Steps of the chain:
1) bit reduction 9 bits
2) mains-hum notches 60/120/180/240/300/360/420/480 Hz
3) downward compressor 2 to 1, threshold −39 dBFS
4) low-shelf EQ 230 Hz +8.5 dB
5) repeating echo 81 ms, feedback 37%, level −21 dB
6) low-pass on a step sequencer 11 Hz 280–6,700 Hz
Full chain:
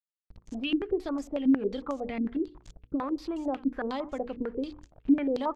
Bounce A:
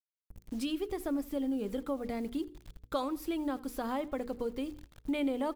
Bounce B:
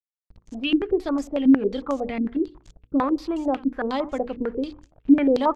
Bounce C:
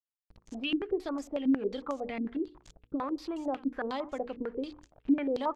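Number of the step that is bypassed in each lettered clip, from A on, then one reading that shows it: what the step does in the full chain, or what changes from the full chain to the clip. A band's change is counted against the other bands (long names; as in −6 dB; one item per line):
6, 250 Hz band −2.5 dB
3, average gain reduction 6.0 dB
4, 250 Hz band −3.0 dB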